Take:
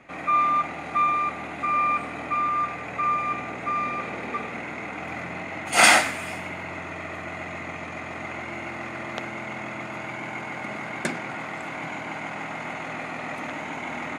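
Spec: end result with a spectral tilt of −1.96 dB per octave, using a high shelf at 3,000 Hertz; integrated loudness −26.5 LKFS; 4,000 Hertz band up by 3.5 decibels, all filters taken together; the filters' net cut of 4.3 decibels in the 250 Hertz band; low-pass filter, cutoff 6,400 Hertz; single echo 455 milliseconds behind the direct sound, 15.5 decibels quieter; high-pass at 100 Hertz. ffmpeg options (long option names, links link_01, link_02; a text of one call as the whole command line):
ffmpeg -i in.wav -af "highpass=100,lowpass=6400,equalizer=frequency=250:width_type=o:gain=-5.5,highshelf=frequency=3000:gain=-3.5,equalizer=frequency=4000:width_type=o:gain=8,aecho=1:1:455:0.168,volume=-0.5dB" out.wav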